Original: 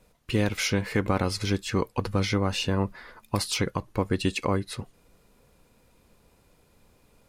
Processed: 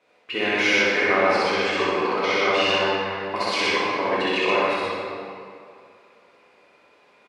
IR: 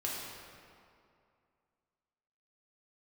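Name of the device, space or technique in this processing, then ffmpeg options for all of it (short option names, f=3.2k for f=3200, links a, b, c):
station announcement: -filter_complex "[0:a]highpass=470,lowpass=3.6k,equalizer=f=2.2k:t=o:w=0.51:g=5,aecho=1:1:64.14|125.4:0.891|0.891[a];[1:a]atrim=start_sample=2205[b];[a][b]afir=irnorm=-1:irlink=0,asettb=1/sr,asplit=3[c][d][e];[c]atrim=end=4.224[f];[d]atrim=start=4.22:end=4.62,asetpts=PTS-STARTPTS,afade=t=in:d=0.004:c=qsin,afade=t=out:st=0.396:d=0.004:c=qsin,lowpass=9.7k[g];[e]atrim=start=4.616[h];[f][g]acrossfade=d=0.004:c1=hsin:c2=qsin[i];[i][h]acrossfade=d=0.004:c1=qsin:c2=hsin,volume=2.5dB"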